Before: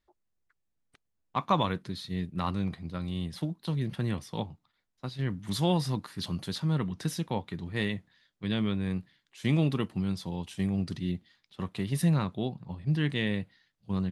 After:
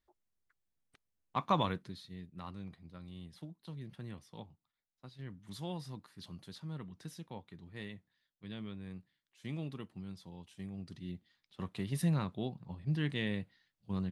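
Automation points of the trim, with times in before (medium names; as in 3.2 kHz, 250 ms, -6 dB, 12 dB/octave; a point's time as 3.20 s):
1.68 s -4.5 dB
2.18 s -15 dB
10.76 s -15 dB
11.62 s -6 dB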